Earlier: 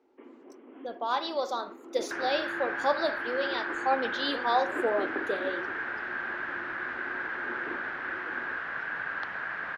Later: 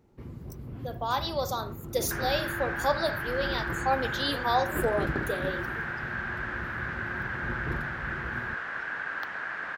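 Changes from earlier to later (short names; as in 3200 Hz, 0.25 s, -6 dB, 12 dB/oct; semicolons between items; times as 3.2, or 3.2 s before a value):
first sound: remove Chebyshev band-pass 260–3200 Hz, order 5; master: remove LPF 4300 Hz 12 dB/oct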